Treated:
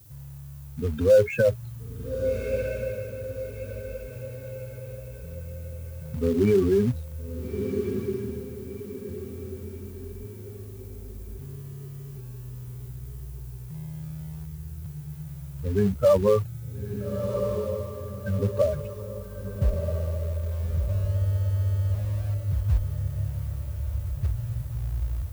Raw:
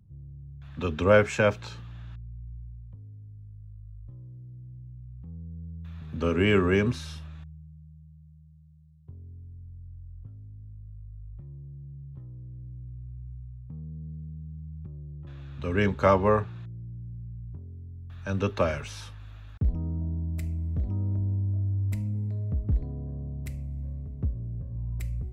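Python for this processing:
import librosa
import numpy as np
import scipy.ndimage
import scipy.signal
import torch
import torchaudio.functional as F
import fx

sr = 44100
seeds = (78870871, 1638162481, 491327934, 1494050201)

p1 = fx.spec_expand(x, sr, power=3.1)
p2 = fx.quant_companded(p1, sr, bits=4)
p3 = p1 + (p2 * librosa.db_to_amplitude(-9.5))
p4 = fx.dmg_noise_colour(p3, sr, seeds[0], colour='violet', level_db=-55.0)
y = fx.echo_diffused(p4, sr, ms=1321, feedback_pct=43, wet_db=-7)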